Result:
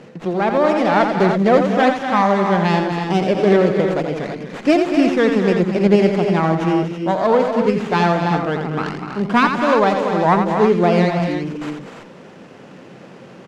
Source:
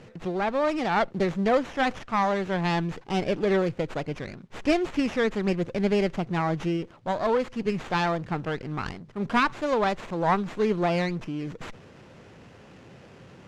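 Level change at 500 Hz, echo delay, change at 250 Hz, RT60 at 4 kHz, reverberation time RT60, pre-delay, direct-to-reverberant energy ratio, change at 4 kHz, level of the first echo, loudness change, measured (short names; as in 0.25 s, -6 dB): +10.5 dB, 86 ms, +10.5 dB, none, none, none, none, +7.0 dB, -7.0 dB, +10.0 dB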